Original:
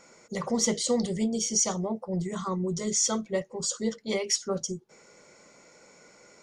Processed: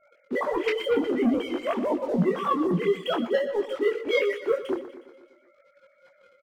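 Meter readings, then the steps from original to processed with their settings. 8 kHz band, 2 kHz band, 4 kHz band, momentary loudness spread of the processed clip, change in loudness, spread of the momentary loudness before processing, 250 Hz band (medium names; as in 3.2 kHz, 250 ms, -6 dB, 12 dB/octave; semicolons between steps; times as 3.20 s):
under -25 dB, +9.5 dB, -4.0 dB, 5 LU, +2.0 dB, 8 LU, +3.0 dB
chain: formants replaced by sine waves; level-controlled noise filter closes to 2 kHz, open at -24 dBFS; waveshaping leveller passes 2; in parallel at -2 dB: compression, threshold -31 dBFS, peak gain reduction 14 dB; on the sum: feedback delay 121 ms, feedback 55%, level -13 dB; detune thickener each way 18 cents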